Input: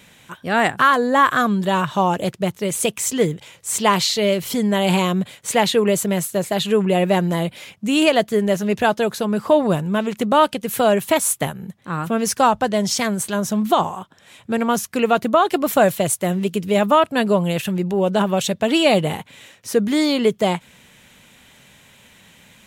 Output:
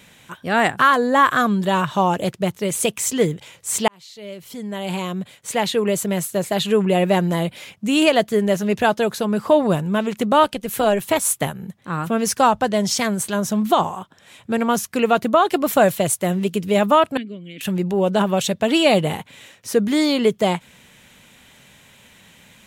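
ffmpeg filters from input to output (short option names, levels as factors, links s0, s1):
-filter_complex "[0:a]asettb=1/sr,asplit=3[s0][s1][s2];[s0]atrim=end=10.434[s3];[s1]atrim=start=10.43:end=11.25,asetpts=PTS-STARTPTS,afade=t=in:d=0.004:c=qsin,afade=t=out:st=0.816:d=0.004:c=qsin,tremolo=f=200:d=0.4[s4];[s2]atrim=start=11.246[s5];[s3][s4]acrossfade=d=0.004:c1=hsin:c2=qsin[s6];[s6][s5]acrossfade=d=0.004:c1=qsin:c2=hsin,asettb=1/sr,asplit=3[s7][s8][s9];[s7]atrim=end=17.174[s10];[s8]atrim=start=17.17:end=17.61,asetpts=PTS-STARTPTS,afade=t=in:d=0.004:c=qsin,afade=t=out:st=0.436:d=0.004:c=qsin,asplit=3[s11][s12][s13];[s11]bandpass=f=270:t=q:w=8,volume=1[s14];[s12]bandpass=f=2290:t=q:w=8,volume=0.501[s15];[s13]bandpass=f=3010:t=q:w=8,volume=0.355[s16];[s14][s15][s16]amix=inputs=3:normalize=0[s17];[s9]atrim=start=17.606[s18];[s10][s17]acrossfade=d=0.004:c1=hsin:c2=qsin[s19];[s19][s18]acrossfade=d=0.004:c1=qsin:c2=hsin,asplit=2[s20][s21];[s20]atrim=end=3.88,asetpts=PTS-STARTPTS,afade=t=out:st=3.876:d=0.004:c=hsin[s22];[s21]atrim=start=3.88,asetpts=PTS-STARTPTS,afade=t=in:d=2.69[s23];[s22][s23]concat=n=2:v=0:a=1"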